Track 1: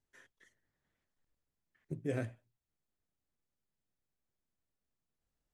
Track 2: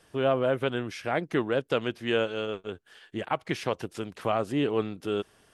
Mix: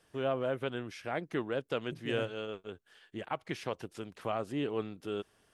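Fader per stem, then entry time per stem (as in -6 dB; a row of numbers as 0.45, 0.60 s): -5.0, -7.5 dB; 0.00, 0.00 s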